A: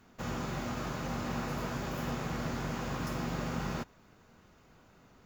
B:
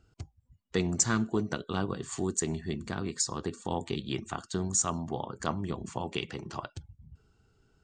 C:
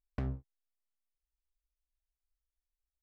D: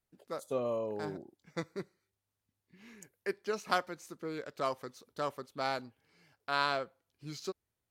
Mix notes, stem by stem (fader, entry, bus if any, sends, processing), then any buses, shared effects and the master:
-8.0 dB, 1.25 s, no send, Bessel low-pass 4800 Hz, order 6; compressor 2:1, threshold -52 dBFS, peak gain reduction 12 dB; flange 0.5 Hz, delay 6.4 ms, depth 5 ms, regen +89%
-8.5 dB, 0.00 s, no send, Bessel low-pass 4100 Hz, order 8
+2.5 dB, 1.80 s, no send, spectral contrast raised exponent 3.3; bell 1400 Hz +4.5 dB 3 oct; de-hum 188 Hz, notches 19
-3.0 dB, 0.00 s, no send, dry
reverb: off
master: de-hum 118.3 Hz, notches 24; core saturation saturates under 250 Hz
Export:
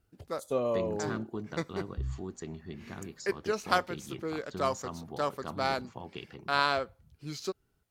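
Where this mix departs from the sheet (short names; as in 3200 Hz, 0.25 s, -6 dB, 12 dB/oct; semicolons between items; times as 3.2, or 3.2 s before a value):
stem A -8.0 dB -> -15.0 dB; stem D -3.0 dB -> +4.0 dB; master: missing de-hum 118.3 Hz, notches 24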